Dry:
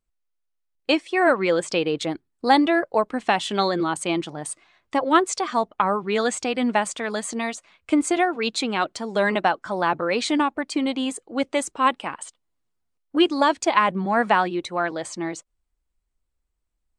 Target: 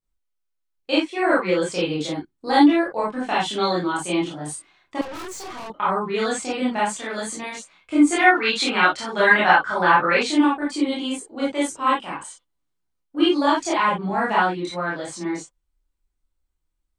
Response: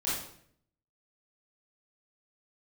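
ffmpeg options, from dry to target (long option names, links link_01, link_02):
-filter_complex "[1:a]atrim=start_sample=2205,atrim=end_sample=3969[link_01];[0:a][link_01]afir=irnorm=-1:irlink=0,asettb=1/sr,asplit=3[link_02][link_03][link_04];[link_02]atrim=end=5.014[link_05];[link_03]atrim=start=5.01:end=5.7,asetpts=PTS-STARTPTS,afade=type=in:duration=0.004:curve=qsin,afade=type=out:start_time=0.686:duration=0.004:curve=qsin,aeval=exprs='(tanh(22.4*val(0)+0.45)-tanh(0.45))/22.4':channel_layout=same[link_06];[link_04]atrim=start=5.696[link_07];[link_05][link_06]acrossfade=duration=0.004:curve1=hsin:curve2=qsin[link_08];[link_08][link_07]acrossfade=duration=0.004:curve1=qsin:curve2=hsin,asettb=1/sr,asplit=3[link_09][link_10][link_11];[link_09]atrim=end=8.124[link_12];[link_10]atrim=start=8.12:end=10.23,asetpts=PTS-STARTPTS,afade=type=in:duration=0.004:curve=qsin,afade=type=out:start_time=2.106:duration=0.004:curve=qsin,equalizer=frequency=1700:width_type=o:width=1.9:gain=11[link_13];[link_11]atrim=start=10.226[link_14];[link_12][link_13]acrossfade=duration=0.004:curve1=hsin:curve2=qsin[link_15];[link_15][link_14]acrossfade=duration=0.004:curve1=qsin:curve2=hsin,volume=-6dB"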